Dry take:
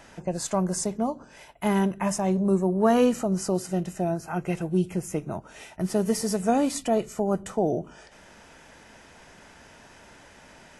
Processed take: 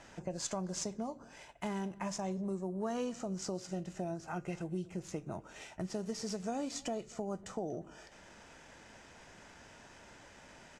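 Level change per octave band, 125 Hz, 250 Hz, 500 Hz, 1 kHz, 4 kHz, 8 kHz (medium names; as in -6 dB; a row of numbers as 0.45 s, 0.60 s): -13.0 dB, -14.0 dB, -14.0 dB, -13.5 dB, -7.5 dB, -10.0 dB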